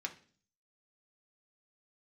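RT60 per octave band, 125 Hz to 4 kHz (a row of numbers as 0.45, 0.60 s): 0.70, 0.65, 0.50, 0.40, 0.45, 0.50 s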